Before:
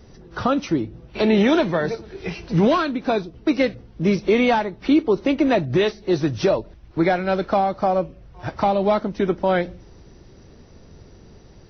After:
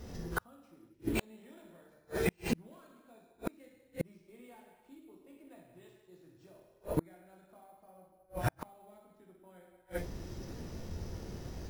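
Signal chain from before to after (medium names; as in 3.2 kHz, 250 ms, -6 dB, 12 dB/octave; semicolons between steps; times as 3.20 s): gated-style reverb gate 430 ms falling, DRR -2 dB; careless resampling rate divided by 4×, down none, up hold; inverted gate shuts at -16 dBFS, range -40 dB; trim -2 dB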